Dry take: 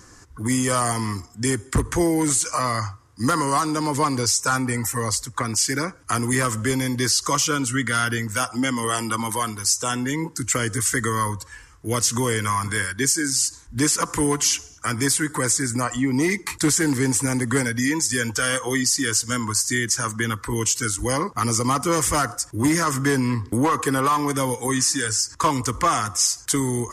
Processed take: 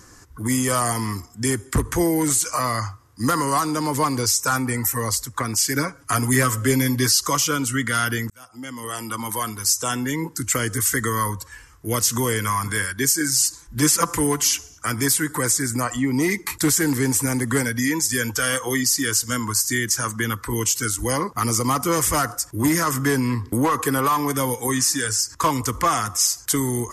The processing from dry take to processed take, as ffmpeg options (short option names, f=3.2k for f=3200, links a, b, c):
-filter_complex "[0:a]asettb=1/sr,asplit=3[a][b][c];[a]atrim=end=5.754[d];[b]atrim=start=5.75:end=7.21,asetpts=PTS-STARTPTS,afade=t=in:d=0.004:c=qsin,afade=t=out:st=1.456:d=0.004:c=qsin,aecho=1:1:7.2:0.65,atrim=end_sample=64386[e];[c]atrim=start=7.206[f];[d][e]acrossfade=d=0.004:c1=hsin:c2=qsin[g];[g][f]acrossfade=d=0.004:c1=qsin:c2=hsin,asettb=1/sr,asplit=3[h][i][j];[h]atrim=end=13.204[k];[i]atrim=start=13.2:end=14.16,asetpts=PTS-STARTPTS,afade=t=in:d=0.004:c=qsin,afade=t=out:st=0.956:d=0.004:c=qsin,aecho=1:1:5.9:0.7,atrim=end_sample=42336[l];[j]atrim=start=14.156[m];[k][l]acrossfade=d=0.004:c1=hsin:c2=qsin[n];[n][m]acrossfade=d=0.004:c1=qsin:c2=hsin,asplit=2[o][p];[o]atrim=end=8.3,asetpts=PTS-STARTPTS,afade=t=out:st=8.296:d=0.004:c=hsin[q];[p]atrim=start=8.3,asetpts=PTS-STARTPTS,afade=t=in:d=1.37[r];[q][r]concat=n=2:v=0:a=1,equalizer=f=12k:w=4.6:g=12.5"